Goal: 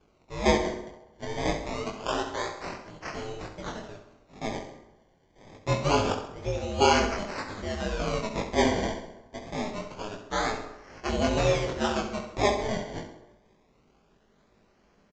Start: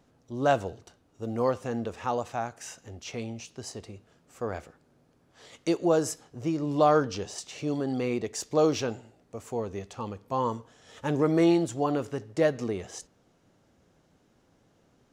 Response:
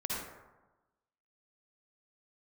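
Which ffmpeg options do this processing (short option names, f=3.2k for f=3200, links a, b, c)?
-filter_complex "[0:a]highshelf=f=2.9k:g=7.5,aecho=1:1:5:0.42,asubboost=boost=2:cutoff=61,aeval=exprs='val(0)*sin(2*PI*210*n/s)':c=same,acrusher=samples=23:mix=1:aa=0.000001:lfo=1:lforange=23:lforate=0.25,flanger=delay=18.5:depth=5.1:speed=2,aecho=1:1:66|132|198|264|330:0.316|0.149|0.0699|0.0328|0.0154,asplit=2[a][b];[1:a]atrim=start_sample=2205[c];[b][c]afir=irnorm=-1:irlink=0,volume=-14dB[d];[a][d]amix=inputs=2:normalize=0,aresample=16000,aresample=44100,volume=3.5dB"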